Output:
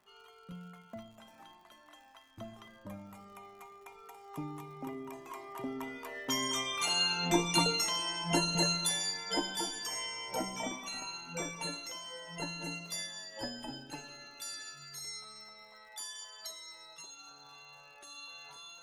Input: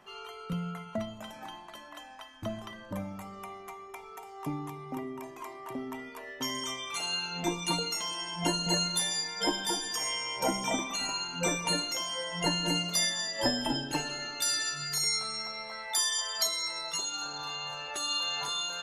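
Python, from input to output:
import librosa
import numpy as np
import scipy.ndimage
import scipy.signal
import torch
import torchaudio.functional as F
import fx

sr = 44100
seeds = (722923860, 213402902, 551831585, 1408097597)

y = fx.doppler_pass(x, sr, speed_mps=7, closest_m=7.8, pass_at_s=7.16)
y = fx.dmg_crackle(y, sr, seeds[0], per_s=130.0, level_db=-57.0)
y = y * librosa.db_to_amplitude(3.0)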